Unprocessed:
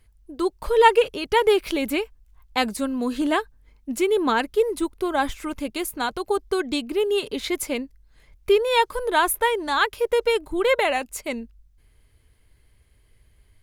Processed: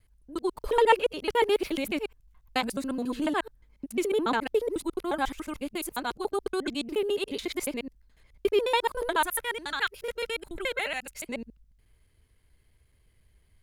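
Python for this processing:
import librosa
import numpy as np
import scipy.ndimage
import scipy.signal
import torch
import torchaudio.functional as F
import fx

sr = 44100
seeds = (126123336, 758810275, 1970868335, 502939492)

y = fx.local_reverse(x, sr, ms=71.0)
y = fx.spec_box(y, sr, start_s=9.26, length_s=1.99, low_hz=220.0, high_hz=1300.0, gain_db=-8)
y = y * 10.0 ** (-5.5 / 20.0)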